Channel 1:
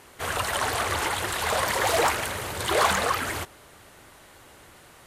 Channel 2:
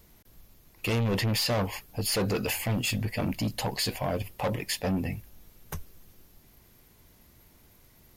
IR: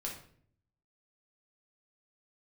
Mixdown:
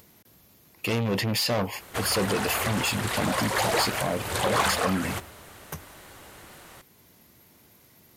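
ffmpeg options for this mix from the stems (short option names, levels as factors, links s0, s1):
-filter_complex "[0:a]acontrast=25,adelay=1750,volume=0.708,asplit=2[s0][s1];[s1]volume=0.158[s2];[1:a]highpass=120,volume=1.26,asplit=2[s3][s4];[s4]apad=whole_len=300469[s5];[s0][s5]sidechaincompress=threshold=0.02:ratio=8:attack=30:release=205[s6];[2:a]atrim=start_sample=2205[s7];[s2][s7]afir=irnorm=-1:irlink=0[s8];[s6][s3][s8]amix=inputs=3:normalize=0,acompressor=mode=upward:threshold=0.00251:ratio=2.5"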